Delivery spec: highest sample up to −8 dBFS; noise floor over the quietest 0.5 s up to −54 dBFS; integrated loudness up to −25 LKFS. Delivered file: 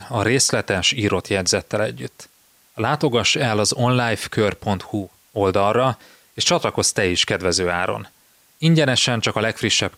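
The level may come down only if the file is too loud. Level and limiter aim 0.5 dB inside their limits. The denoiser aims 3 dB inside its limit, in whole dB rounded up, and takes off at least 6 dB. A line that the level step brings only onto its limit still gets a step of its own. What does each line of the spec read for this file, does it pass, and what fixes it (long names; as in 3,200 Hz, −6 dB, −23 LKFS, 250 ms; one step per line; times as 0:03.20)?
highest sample −5.5 dBFS: out of spec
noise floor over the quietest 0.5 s −56 dBFS: in spec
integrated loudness −19.5 LKFS: out of spec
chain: level −6 dB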